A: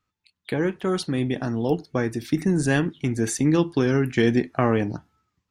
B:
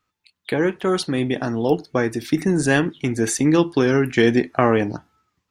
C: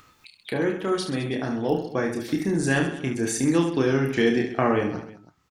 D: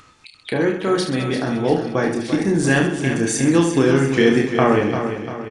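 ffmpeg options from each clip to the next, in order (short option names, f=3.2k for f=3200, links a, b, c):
-af "bass=f=250:g=-6,treble=f=4k:g=-1,volume=5.5dB"
-filter_complex "[0:a]asplit=2[a][b];[b]aecho=0:1:30|72|130.8|213.1|328.4:0.631|0.398|0.251|0.158|0.1[c];[a][c]amix=inputs=2:normalize=0,acompressor=mode=upward:threshold=-30dB:ratio=2.5,volume=-6.5dB"
-filter_complex "[0:a]asplit=2[a][b];[b]aecho=0:1:346|692|1038|1384|1730:0.355|0.17|0.0817|0.0392|0.0188[c];[a][c]amix=inputs=2:normalize=0,aresample=22050,aresample=44100,volume=5.5dB"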